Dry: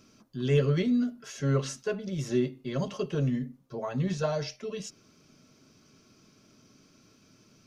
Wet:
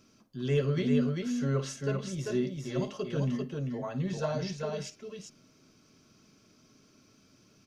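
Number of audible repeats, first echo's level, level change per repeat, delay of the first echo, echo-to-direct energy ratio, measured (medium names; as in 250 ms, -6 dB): 2, -14.0 dB, no regular repeats, 53 ms, -3.0 dB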